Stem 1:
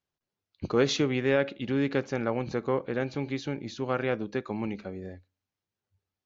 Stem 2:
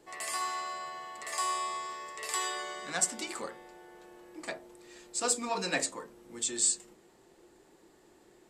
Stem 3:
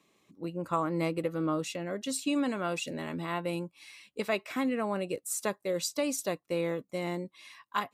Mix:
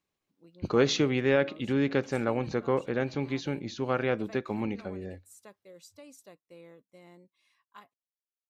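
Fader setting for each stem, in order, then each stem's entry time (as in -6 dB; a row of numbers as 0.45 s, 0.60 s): +0.5 dB, mute, -20.0 dB; 0.00 s, mute, 0.00 s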